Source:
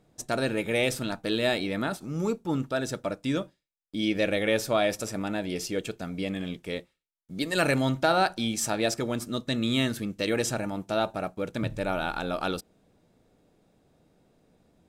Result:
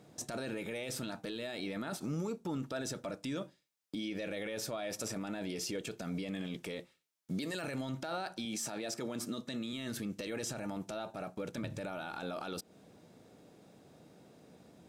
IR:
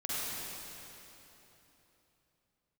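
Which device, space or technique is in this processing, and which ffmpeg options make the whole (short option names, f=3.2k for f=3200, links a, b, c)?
broadcast voice chain: -filter_complex "[0:a]highpass=110,deesser=0.5,acompressor=threshold=-37dB:ratio=5,equalizer=f=5.7k:t=o:w=0.77:g=2.5,alimiter=level_in=11.5dB:limit=-24dB:level=0:latency=1:release=15,volume=-11.5dB,asettb=1/sr,asplit=3[a][b][c];[a]atrim=end=8.454[d];[b]atrim=start=8.45:end=9.73,asetpts=PTS-STARTPTS,afade=t=in:d=0.004:c=qsin,afade=t=out:st=1.276:d=0.004:c=qsin,highpass=130[e];[c]atrim=start=9.726[f];[d][e]acrossfade=d=0.004:c1=hsin:c2=qsin[g];[g][f]acrossfade=d=0.004:c1=qsin:c2=hsin,volume=6dB"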